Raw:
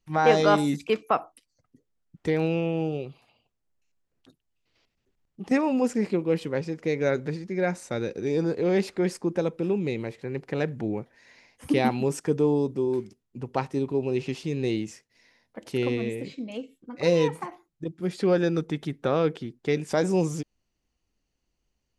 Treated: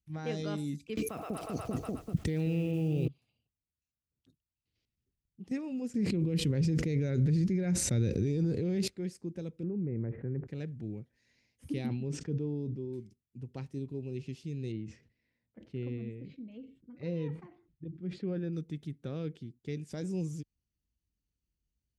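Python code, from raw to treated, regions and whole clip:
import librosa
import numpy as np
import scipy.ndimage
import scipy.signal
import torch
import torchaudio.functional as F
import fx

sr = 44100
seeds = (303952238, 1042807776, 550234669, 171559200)

y = fx.chain(x, sr, fx.block_float(bits=7),
    fx.echo_split(split_hz=450.0, low_ms=195, high_ms=121, feedback_pct=52, wet_db=-12),
    fx.env_flatten(amount_pct=100), at=(0.97, 3.08))
y = fx.chain(y, sr, fx.low_shelf(hz=120.0, db=11.5),
    fx.env_flatten(amount_pct=100), at=(5.94, 8.88))
y = fx.chain(y, sr, fx.steep_lowpass(hz=1700.0, slope=36),
    fx.env_flatten(amount_pct=70), at=(9.63, 10.47))
y = fx.chain(y, sr, fx.air_absorb(metres=150.0),
    fx.sustainer(db_per_s=68.0), at=(11.86, 12.93))
y = fx.chain(y, sr, fx.lowpass(hz=2300.0, slope=12),
    fx.sustainer(db_per_s=120.0), at=(14.72, 18.53))
y = scipy.signal.sosfilt(scipy.signal.butter(2, 63.0, 'highpass', fs=sr, output='sos'), y)
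y = fx.tone_stack(y, sr, knobs='10-0-1')
y = y * librosa.db_to_amplitude(7.5)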